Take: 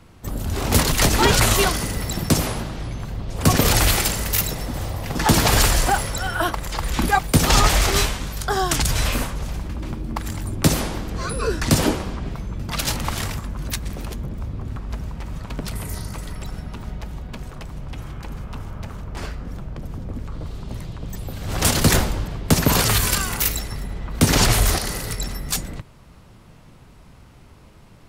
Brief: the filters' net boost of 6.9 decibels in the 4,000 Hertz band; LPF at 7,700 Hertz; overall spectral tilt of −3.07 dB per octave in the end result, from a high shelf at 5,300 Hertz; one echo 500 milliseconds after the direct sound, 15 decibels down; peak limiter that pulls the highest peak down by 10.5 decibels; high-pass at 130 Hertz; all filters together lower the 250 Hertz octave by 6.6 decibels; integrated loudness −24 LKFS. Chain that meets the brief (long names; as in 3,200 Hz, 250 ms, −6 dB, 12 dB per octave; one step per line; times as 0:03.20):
high-pass filter 130 Hz
low-pass filter 7,700 Hz
parametric band 250 Hz −8.5 dB
parametric band 4,000 Hz +6.5 dB
high-shelf EQ 5,300 Hz +5.5 dB
brickwall limiter −9.5 dBFS
single-tap delay 500 ms −15 dB
level −2.5 dB